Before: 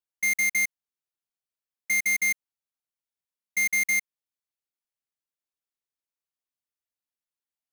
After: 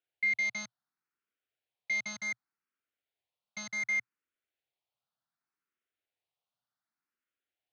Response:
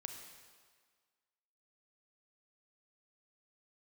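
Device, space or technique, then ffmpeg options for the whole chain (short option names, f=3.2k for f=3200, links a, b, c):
barber-pole phaser into a guitar amplifier: -filter_complex "[0:a]asplit=2[a][b];[b]afreqshift=0.67[c];[a][c]amix=inputs=2:normalize=1,asoftclip=type=tanh:threshold=-31dB,highpass=82,equalizer=f=120:t=q:w=4:g=5,equalizer=f=730:t=q:w=4:g=5,equalizer=f=1.4k:t=q:w=4:g=6,lowpass=f=4.2k:w=0.5412,lowpass=f=4.2k:w=1.3066,volume=6dB"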